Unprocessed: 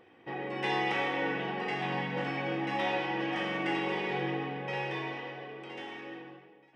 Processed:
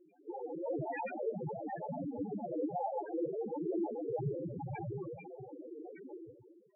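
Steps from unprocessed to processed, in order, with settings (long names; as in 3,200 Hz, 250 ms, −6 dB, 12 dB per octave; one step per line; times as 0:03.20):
hum removal 226.3 Hz, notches 38
amplitude modulation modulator 230 Hz, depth 70%
cochlear-implant simulation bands 8
spectral peaks only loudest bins 2
level +10 dB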